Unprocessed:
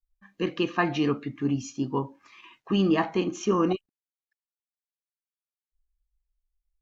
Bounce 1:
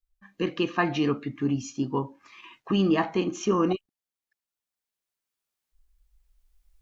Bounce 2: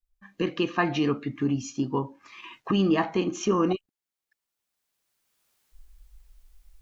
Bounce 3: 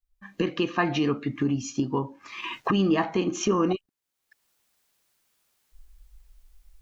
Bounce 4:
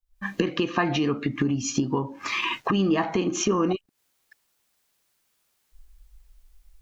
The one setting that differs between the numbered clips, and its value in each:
recorder AGC, rising by: 5.5, 14, 34, 90 dB/s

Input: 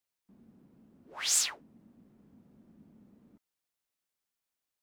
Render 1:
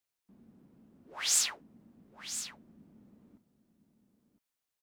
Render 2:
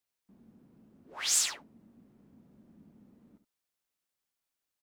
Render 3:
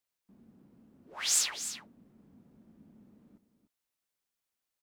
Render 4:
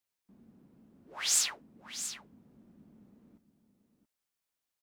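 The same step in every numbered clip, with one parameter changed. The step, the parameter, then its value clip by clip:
echo, time: 1009, 70, 297, 678 ms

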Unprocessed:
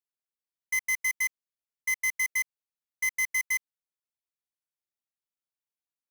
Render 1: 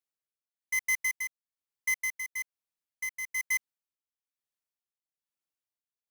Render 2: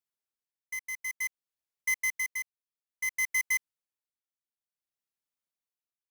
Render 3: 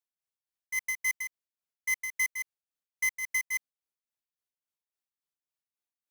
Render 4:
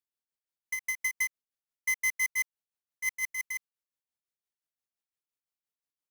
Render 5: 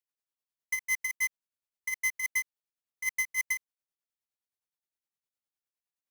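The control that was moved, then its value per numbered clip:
tremolo, rate: 1.1, 0.57, 3.6, 5.8, 9.7 Hz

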